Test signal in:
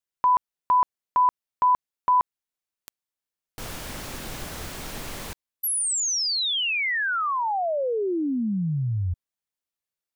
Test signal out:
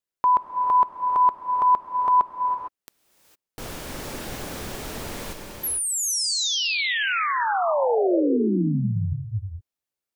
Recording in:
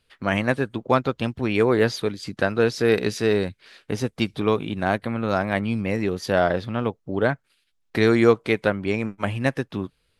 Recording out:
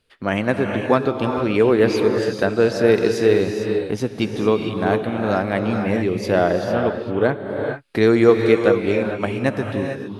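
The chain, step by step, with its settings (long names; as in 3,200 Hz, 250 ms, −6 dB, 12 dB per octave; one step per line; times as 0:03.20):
parametric band 380 Hz +5 dB 1.9 octaves
reverb whose tail is shaped and stops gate 480 ms rising, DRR 3.5 dB
level −1 dB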